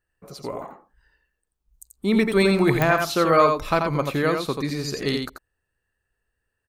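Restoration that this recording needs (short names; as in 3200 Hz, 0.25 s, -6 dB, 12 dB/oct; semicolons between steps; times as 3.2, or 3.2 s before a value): de-click; inverse comb 86 ms -5 dB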